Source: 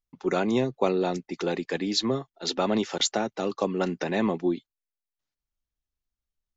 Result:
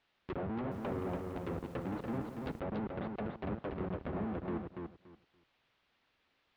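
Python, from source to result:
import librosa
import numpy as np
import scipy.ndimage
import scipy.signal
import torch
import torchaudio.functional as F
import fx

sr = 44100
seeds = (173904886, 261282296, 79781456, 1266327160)

y = fx.dispersion(x, sr, late='lows', ms=44.0, hz=1000.0)
y = fx.schmitt(y, sr, flips_db=-25.0)
y = scipy.signal.sosfilt(scipy.signal.butter(2, 75.0, 'highpass', fs=sr, output='sos'), y)
y = fx.env_lowpass_down(y, sr, base_hz=1200.0, full_db=-28.0)
y = fx.dmg_noise_colour(y, sr, seeds[0], colour='white', level_db=-63.0)
y = scipy.signal.sosfilt(scipy.signal.butter(4, 3600.0, 'lowpass', fs=sr, output='sos'), y)
y = fx.echo_feedback(y, sr, ms=286, feedback_pct=19, wet_db=-4.5)
y = fx.echo_crushed(y, sr, ms=172, feedback_pct=55, bits=8, wet_db=-10.5, at=(0.54, 2.6))
y = y * librosa.db_to_amplitude(-7.5)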